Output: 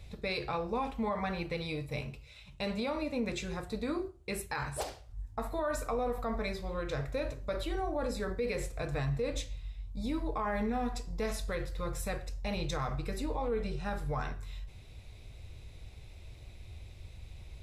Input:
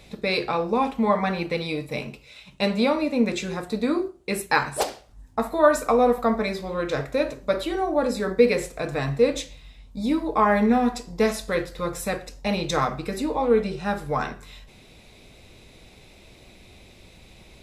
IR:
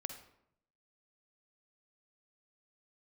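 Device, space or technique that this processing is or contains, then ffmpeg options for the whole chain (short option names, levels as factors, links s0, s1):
car stereo with a boomy subwoofer: -af "lowshelf=f=140:t=q:w=1.5:g=12.5,alimiter=limit=0.15:level=0:latency=1:release=46,volume=0.376"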